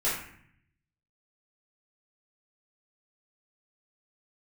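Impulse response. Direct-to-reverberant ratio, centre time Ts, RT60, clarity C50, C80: −9.0 dB, 49 ms, 0.60 s, 2.5 dB, 6.5 dB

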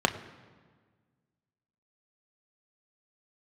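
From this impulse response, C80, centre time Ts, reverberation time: 14.0 dB, 13 ms, 1.6 s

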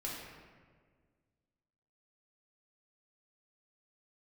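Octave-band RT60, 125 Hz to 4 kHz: 2.2, 2.1, 1.9, 1.5, 1.4, 0.95 seconds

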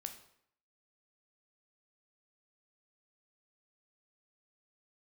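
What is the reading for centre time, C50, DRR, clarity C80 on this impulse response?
13 ms, 10.0 dB, 6.0 dB, 13.0 dB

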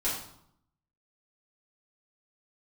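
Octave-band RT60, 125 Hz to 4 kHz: 0.95, 0.90, 0.70, 0.75, 0.55, 0.55 seconds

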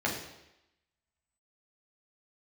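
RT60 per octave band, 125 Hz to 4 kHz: 0.80, 0.85, 0.90, 0.90, 0.90, 0.90 seconds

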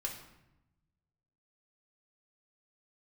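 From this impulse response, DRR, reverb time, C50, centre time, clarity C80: −1.5 dB, 0.90 s, 7.0 dB, 26 ms, 9.5 dB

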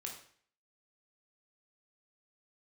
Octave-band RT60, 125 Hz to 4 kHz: 0.55, 0.55, 0.55, 0.55, 0.55, 0.50 seconds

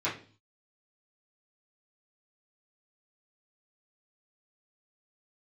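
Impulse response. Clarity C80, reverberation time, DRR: 15.0 dB, 0.40 s, −11.5 dB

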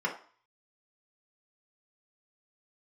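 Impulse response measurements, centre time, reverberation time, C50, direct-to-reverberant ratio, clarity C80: 17 ms, 0.45 s, 9.5 dB, −3.5 dB, 14.0 dB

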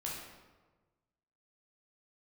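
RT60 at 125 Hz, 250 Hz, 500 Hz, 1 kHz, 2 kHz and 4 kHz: 1.7, 1.4, 1.4, 1.2, 1.0, 0.80 seconds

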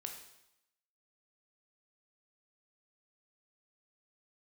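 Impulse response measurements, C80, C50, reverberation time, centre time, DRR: 8.5 dB, 6.0 dB, 0.85 s, 27 ms, 2.5 dB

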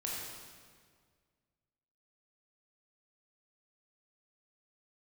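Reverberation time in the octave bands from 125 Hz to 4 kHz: 2.2, 2.0, 1.9, 1.7, 1.6, 1.5 seconds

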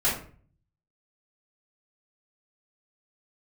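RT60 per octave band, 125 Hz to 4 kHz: 0.90, 0.60, 0.45, 0.40, 0.40, 0.30 seconds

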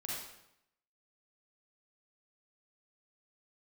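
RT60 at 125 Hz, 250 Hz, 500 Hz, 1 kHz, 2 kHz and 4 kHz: 0.90, 0.85, 0.80, 0.80, 0.75, 0.70 seconds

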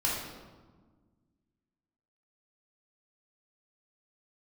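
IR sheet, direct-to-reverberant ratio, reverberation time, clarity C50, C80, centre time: −6.5 dB, 1.4 s, 0.5 dB, 3.5 dB, 70 ms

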